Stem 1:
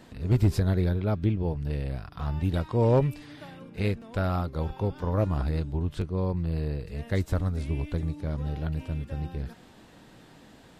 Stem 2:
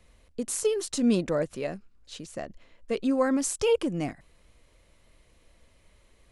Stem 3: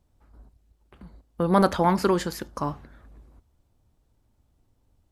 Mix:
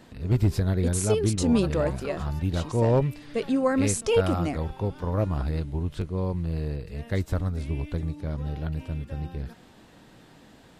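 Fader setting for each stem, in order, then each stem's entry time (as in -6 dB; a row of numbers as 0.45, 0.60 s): 0.0, +1.0, -18.0 dB; 0.00, 0.45, 0.00 s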